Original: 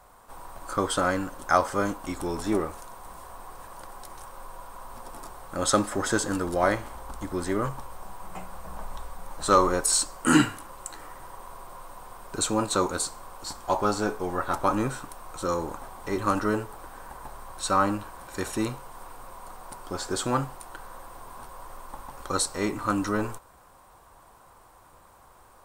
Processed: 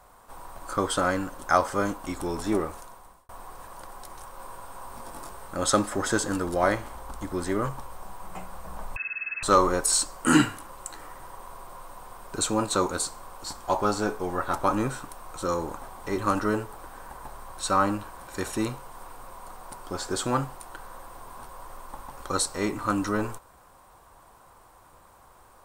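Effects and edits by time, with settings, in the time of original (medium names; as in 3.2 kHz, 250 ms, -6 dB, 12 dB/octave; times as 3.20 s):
2.76–3.29 s: fade out
4.37–5.52 s: doubling 22 ms -3 dB
8.96–9.43 s: frequency inversion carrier 2.6 kHz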